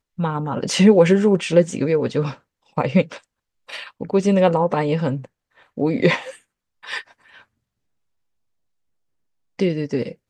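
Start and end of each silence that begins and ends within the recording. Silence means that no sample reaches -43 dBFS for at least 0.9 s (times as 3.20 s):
7.42–9.59 s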